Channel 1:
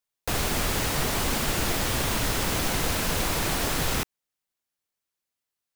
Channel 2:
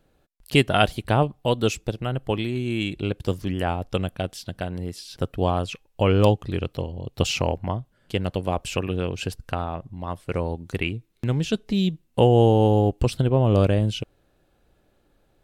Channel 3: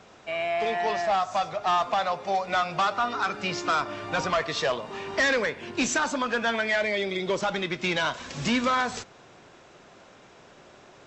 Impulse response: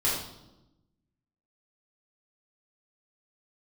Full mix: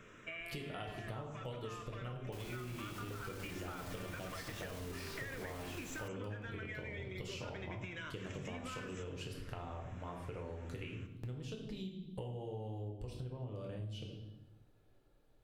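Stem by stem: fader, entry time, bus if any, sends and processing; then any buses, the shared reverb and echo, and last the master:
-13.0 dB, 2.05 s, no send, limiter -24.5 dBFS, peak gain reduction 10.5 dB
-14.5 dB, 0.00 s, send -7.5 dB, compressor 3:1, threshold -27 dBFS, peak gain reduction 12 dB
-3.0 dB, 0.00 s, send -17.5 dB, compressor, threshold -35 dBFS, peak gain reduction 13.5 dB; fixed phaser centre 1900 Hz, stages 4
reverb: on, pre-delay 5 ms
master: compressor, threshold -41 dBFS, peak gain reduction 12 dB

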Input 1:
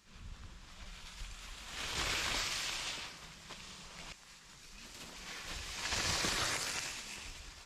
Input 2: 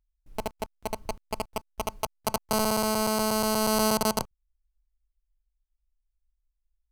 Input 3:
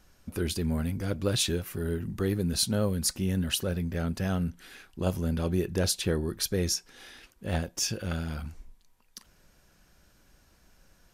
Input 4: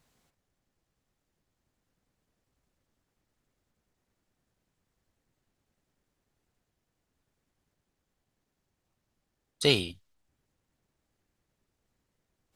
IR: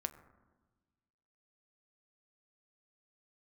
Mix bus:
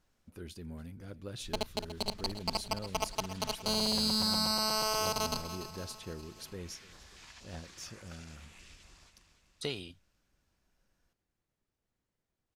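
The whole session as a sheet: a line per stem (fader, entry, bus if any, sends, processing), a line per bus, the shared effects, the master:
-6.0 dB, 1.45 s, no send, echo send -9 dB, compressor 16:1, threshold -44 dBFS, peak gain reduction 14.5 dB; stepped notch 4.2 Hz 410–5300 Hz
+0.5 dB, 1.15 s, no send, echo send -12 dB, bell 4400 Hz +14 dB 0.88 oct; limiter -14.5 dBFS, peak gain reduction 8 dB; endless flanger 4.2 ms -0.5 Hz
-15.5 dB, 0.00 s, no send, echo send -20 dB, dry
-7.5 dB, 0.00 s, no send, no echo send, compressor 4:1, threshold -25 dBFS, peak gain reduction 7.5 dB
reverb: off
echo: feedback echo 0.29 s, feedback 55%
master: high shelf 9100 Hz -5.5 dB

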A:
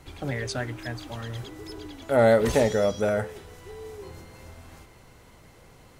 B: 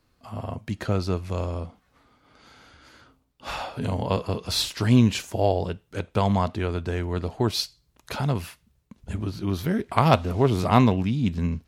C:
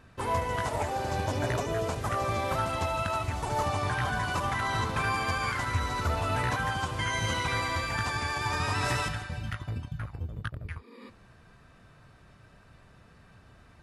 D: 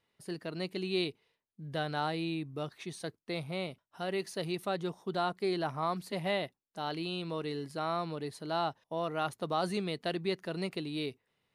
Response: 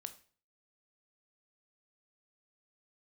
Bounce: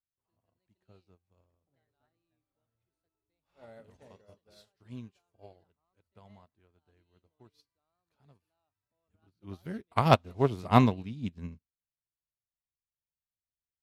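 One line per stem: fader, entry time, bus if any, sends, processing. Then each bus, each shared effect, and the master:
-13.5 dB, 1.45 s, send -9 dB, low-pass opened by the level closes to 630 Hz, open at -16.5 dBFS
9.2 s -10 dB -> 9.52 s -0.5 dB, 0.00 s, no send, dry
-16.0 dB, 0.00 s, no send, low shelf 130 Hz +10.5 dB; compressor 2.5:1, threshold -41 dBFS, peak gain reduction 15.5 dB
-14.0 dB, 0.00 s, no send, HPF 160 Hz; sample leveller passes 1; vibrato 2.4 Hz 62 cents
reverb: on, RT60 0.45 s, pre-delay 15 ms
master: upward expander 2.5:1, over -41 dBFS

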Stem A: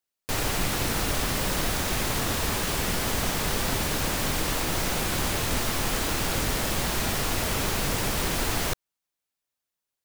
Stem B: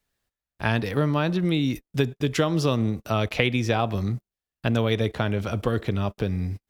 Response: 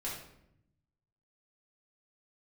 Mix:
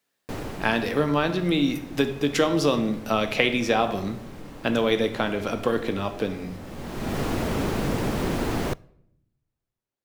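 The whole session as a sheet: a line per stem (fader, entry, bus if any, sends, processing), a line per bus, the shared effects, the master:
-3.0 dB, 0.00 s, send -23.5 dB, high shelf 4000 Hz -10 dB; auto duck -19 dB, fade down 1.10 s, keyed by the second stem
0.0 dB, 0.00 s, send -6 dB, HPF 1000 Hz 6 dB/oct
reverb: on, RT60 0.75 s, pre-delay 4 ms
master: bell 260 Hz +10 dB 2.7 oct

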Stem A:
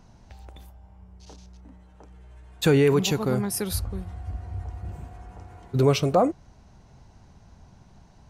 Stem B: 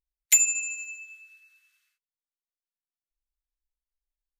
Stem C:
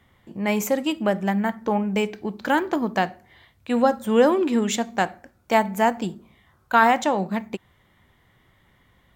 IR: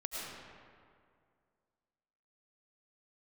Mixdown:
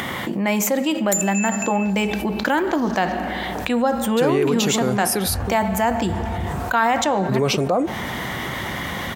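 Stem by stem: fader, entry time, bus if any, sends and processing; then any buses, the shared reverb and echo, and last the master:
-4.5 dB, 1.55 s, no send, HPF 66 Hz 24 dB/oct
+0.5 dB, 0.80 s, send -17.5 dB, compressor, threshold -27 dBFS, peak gain reduction 12.5 dB; step phaser 7.3 Hz 600–2600 Hz
-4.5 dB, 0.00 s, send -20 dB, upward compressor, threshold -37 dBFS; HPF 120 Hz; notch 430 Hz, Q 14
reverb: on, RT60 2.2 s, pre-delay 65 ms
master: bell 91 Hz -7 dB 1.5 oct; fast leveller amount 70%

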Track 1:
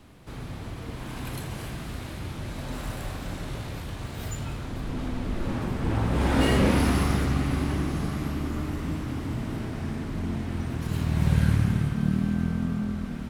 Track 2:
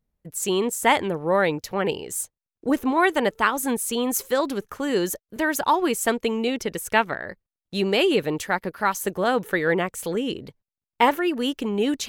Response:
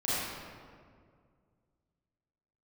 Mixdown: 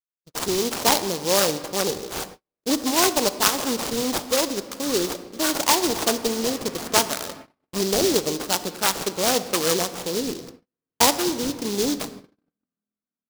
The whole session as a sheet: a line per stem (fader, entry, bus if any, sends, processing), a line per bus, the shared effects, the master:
-11.5 dB, 0.00 s, send -21.5 dB, HPF 390 Hz 6 dB/oct; high shelf 2300 Hz -8 dB; notch 860 Hz, Q 12
+0.5 dB, 0.00 s, send -20.5 dB, sample-rate reducer 3000 Hz, jitter 0%; noise-modulated delay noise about 4800 Hz, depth 0.14 ms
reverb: on, RT60 2.1 s, pre-delay 30 ms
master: low shelf 180 Hz -9 dB; gate -39 dBFS, range -44 dB

